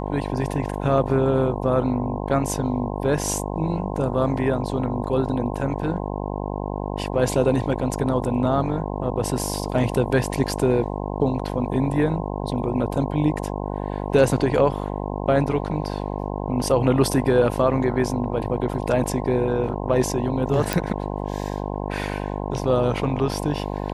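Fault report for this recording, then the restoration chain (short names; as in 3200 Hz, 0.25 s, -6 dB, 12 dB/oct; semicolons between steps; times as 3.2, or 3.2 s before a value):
buzz 50 Hz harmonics 21 -28 dBFS
20.73 pop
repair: de-click; de-hum 50 Hz, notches 21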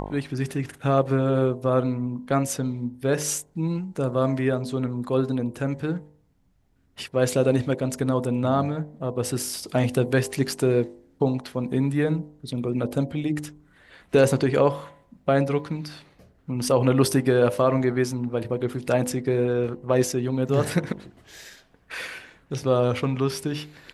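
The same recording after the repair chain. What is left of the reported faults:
none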